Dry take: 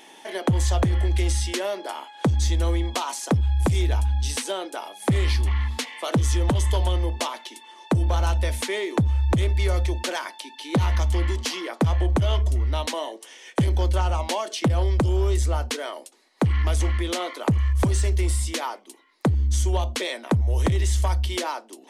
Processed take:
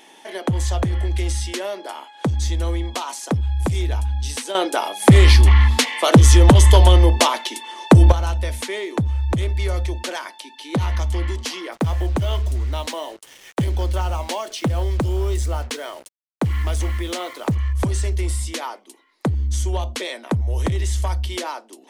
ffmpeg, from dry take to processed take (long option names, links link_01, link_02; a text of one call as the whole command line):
ffmpeg -i in.wav -filter_complex "[0:a]asettb=1/sr,asplit=3[link_01][link_02][link_03];[link_01]atrim=end=11.724[link_04];[link_02]atrim=start=11.72:end=17.55,asetpts=PTS-STARTPTS,afade=type=in:duration=0.004:curve=qsin,afade=type=out:start_time=5.826:duration=0.004:curve=qsin,acrusher=bits=6:mix=0:aa=0.5[link_05];[link_03]atrim=start=17.546[link_06];[link_04][link_05]acrossfade=duration=0.004:curve1=hsin:curve2=qsin[link_07];[link_07][link_06]acrossfade=duration=0.004:curve1=qsin:curve2=hsin,asplit=3[link_08][link_09][link_10];[link_08]atrim=end=4.552[link_11];[link_09]atrim=start=4.548:end=8.122,asetpts=PTS-STARTPTS,volume=11.5dB[link_12];[link_10]atrim=start=8.118[link_13];[link_11][link_12]acrossfade=duration=0.004:curve1=hsin:curve2=hsin[link_14];[link_14][link_13]acrossfade=duration=0.004:curve1=hsin:curve2=hsin" out.wav